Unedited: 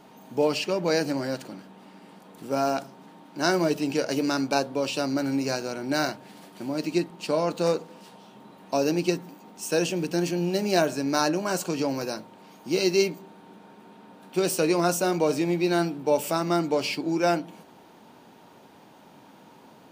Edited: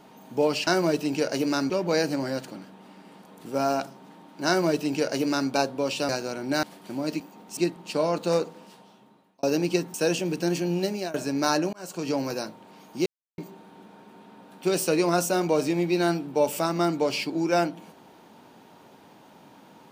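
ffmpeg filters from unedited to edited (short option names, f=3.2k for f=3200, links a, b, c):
-filter_complex "[0:a]asplit=13[a][b][c][d][e][f][g][h][i][j][k][l][m];[a]atrim=end=0.672[n];[b]atrim=start=3.438:end=4.472[o];[c]atrim=start=0.668:end=5.062[p];[d]atrim=start=5.488:end=6.032[q];[e]atrim=start=6.338:end=6.912[r];[f]atrim=start=9.278:end=9.652[s];[g]atrim=start=6.908:end=8.77,asetpts=PTS-STARTPTS,afade=t=out:st=0.962:d=0.9[t];[h]atrim=start=8.77:end=9.282,asetpts=PTS-STARTPTS,afade=t=in:d=0.004:c=hsin[u];[i]atrim=start=9.648:end=10.85,asetpts=PTS-STARTPTS,afade=t=out:st=0.882:d=0.32:silence=0.0749894[v];[j]atrim=start=10.85:end=11.44,asetpts=PTS-STARTPTS,afade=t=in:d=0.004:c=hsin:silence=0.0749894,afade=t=out:st=0.586:d=0.004:c=hsin[w];[k]atrim=start=11.44:end=12.77,asetpts=PTS-STARTPTS,afade=t=in:d=0.4,afade=t=out:st=1.326:d=0.004:c=hsin[x];[l]atrim=start=12.77:end=13.09,asetpts=PTS-STARTPTS,volume=0[y];[m]atrim=start=13.09,asetpts=PTS-STARTPTS,afade=t=in:d=0.004:c=hsin[z];[n][o]acrossfade=d=0.004:c1=hsin:c2=hsin[aa];[aa][p]acrossfade=d=0.004:c1=hsin:c2=hsin[ab];[ab][q]acrossfade=d=0.004:c1=hsin:c2=hsin[ac];[ac][r]acrossfade=d=0.004:c1=hsin:c2=hsin[ad];[ad][s]acrossfade=d=0.004:c1=hsin:c2=hsin[ae];[t][u]concat=n=2:v=0:a=1[af];[ae][af]acrossfade=d=0.004:c1=hsin:c2=hsin[ag];[v][w][x][y][z]concat=n=5:v=0:a=1[ah];[ag][ah]acrossfade=d=0.004:c1=hsin:c2=hsin"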